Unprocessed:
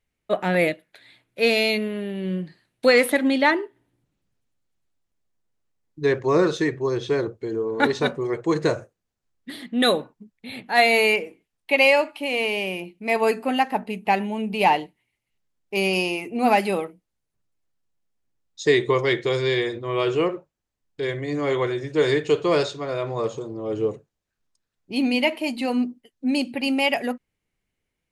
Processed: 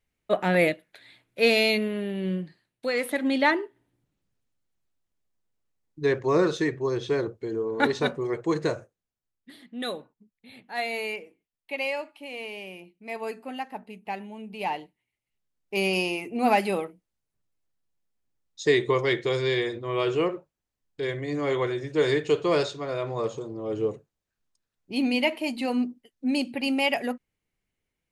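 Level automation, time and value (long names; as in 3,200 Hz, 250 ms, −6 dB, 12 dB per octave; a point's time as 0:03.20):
0:02.28 −1 dB
0:02.88 −12 dB
0:03.37 −3 dB
0:08.43 −3 dB
0:09.59 −13 dB
0:14.49 −13 dB
0:15.75 −3 dB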